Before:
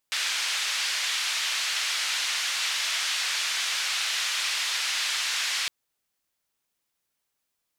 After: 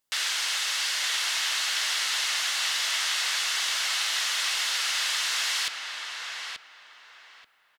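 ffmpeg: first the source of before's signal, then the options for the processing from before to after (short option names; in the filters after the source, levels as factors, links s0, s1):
-f lavfi -i "anoisesrc=c=white:d=5.56:r=44100:seed=1,highpass=f=1700,lowpass=f=4600,volume=-14.7dB"
-filter_complex "[0:a]bandreject=f=2400:w=13,asplit=2[s0][s1];[s1]adelay=882,lowpass=f=2200:p=1,volume=0.708,asplit=2[s2][s3];[s3]adelay=882,lowpass=f=2200:p=1,volume=0.27,asplit=2[s4][s5];[s5]adelay=882,lowpass=f=2200:p=1,volume=0.27,asplit=2[s6][s7];[s7]adelay=882,lowpass=f=2200:p=1,volume=0.27[s8];[s2][s4][s6][s8]amix=inputs=4:normalize=0[s9];[s0][s9]amix=inputs=2:normalize=0"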